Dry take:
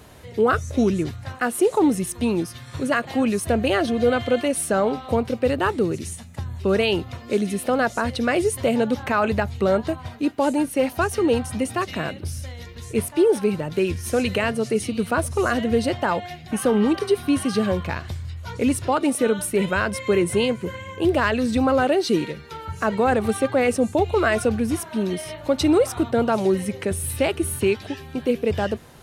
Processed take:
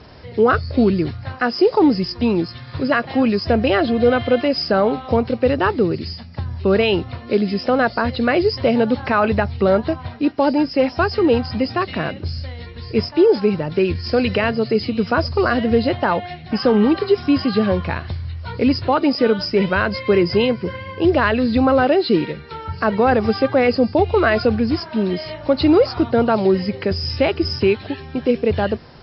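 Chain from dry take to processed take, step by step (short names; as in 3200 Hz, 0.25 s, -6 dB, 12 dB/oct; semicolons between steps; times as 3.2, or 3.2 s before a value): nonlinear frequency compression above 4000 Hz 4:1; air absorption 120 m; gain +4.5 dB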